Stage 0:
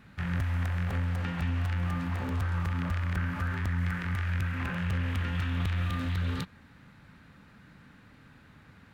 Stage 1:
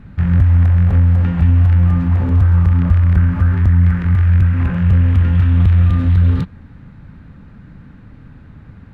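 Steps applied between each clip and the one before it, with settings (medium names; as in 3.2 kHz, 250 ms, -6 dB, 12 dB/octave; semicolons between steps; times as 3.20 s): tilt EQ -3.5 dB/octave; trim +7 dB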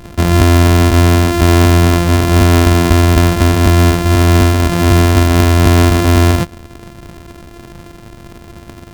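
sorted samples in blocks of 128 samples; in parallel at -1.5 dB: peak limiter -11.5 dBFS, peak gain reduction 9 dB; on the sum: trim -1 dB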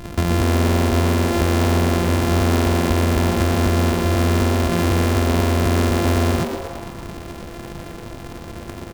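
compression 4:1, threshold -18 dBFS, peak gain reduction 11 dB; on a send: frequency-shifting echo 119 ms, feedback 56%, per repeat +150 Hz, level -8 dB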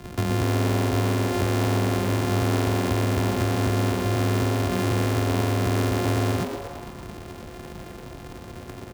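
frequency shift +18 Hz; trim -5.5 dB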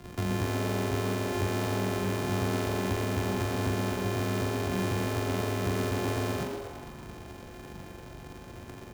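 flutter echo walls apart 7.2 m, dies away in 0.4 s; trim -6.5 dB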